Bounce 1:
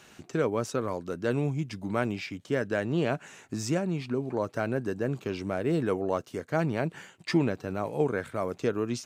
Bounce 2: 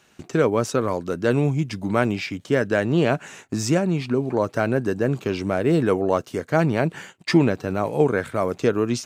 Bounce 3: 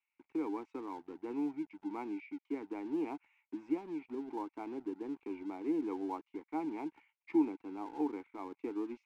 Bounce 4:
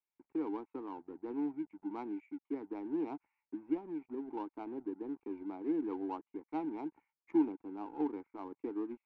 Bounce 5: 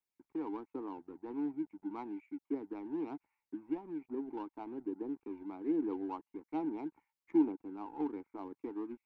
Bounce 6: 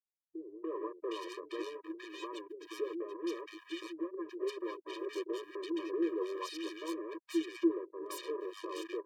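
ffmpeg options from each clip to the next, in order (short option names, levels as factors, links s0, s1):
-af "agate=range=0.251:threshold=0.00316:ratio=16:detection=peak,volume=2.51"
-filter_complex "[0:a]asplit=3[s0][s1][s2];[s0]bandpass=f=300:t=q:w=8,volume=1[s3];[s1]bandpass=f=870:t=q:w=8,volume=0.501[s4];[s2]bandpass=f=2240:t=q:w=8,volume=0.355[s5];[s3][s4][s5]amix=inputs=3:normalize=0,acrossover=split=300 2000:gain=0.0708 1 0.0708[s6][s7][s8];[s6][s7][s8]amix=inputs=3:normalize=0,acrossover=split=1600[s9][s10];[s9]aeval=exprs='sgn(val(0))*max(abs(val(0))-0.00178,0)':c=same[s11];[s11][s10]amix=inputs=2:normalize=0,volume=0.841"
-af "adynamicsmooth=sensitivity=4.5:basefreq=1100"
-af "aphaser=in_gain=1:out_gain=1:delay=1.2:decay=0.3:speed=1.2:type=triangular,volume=0.891"
-filter_complex "[0:a]acrusher=bits=6:mix=0:aa=0.5,acrossover=split=300|1400[s0][s1][s2];[s1]adelay=290[s3];[s2]adelay=760[s4];[s0][s3][s4]amix=inputs=3:normalize=0,afftfilt=real='re*eq(mod(floor(b*sr/1024/320),2),1)':imag='im*eq(mod(floor(b*sr/1024/320),2),1)':win_size=1024:overlap=0.75,volume=2.66"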